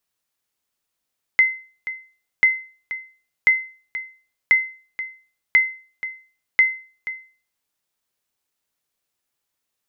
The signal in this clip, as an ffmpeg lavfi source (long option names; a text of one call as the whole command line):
ffmpeg -f lavfi -i "aevalsrc='0.447*(sin(2*PI*2060*mod(t,1.04))*exp(-6.91*mod(t,1.04)/0.39)+0.2*sin(2*PI*2060*max(mod(t,1.04)-0.48,0))*exp(-6.91*max(mod(t,1.04)-0.48,0)/0.39))':duration=6.24:sample_rate=44100" out.wav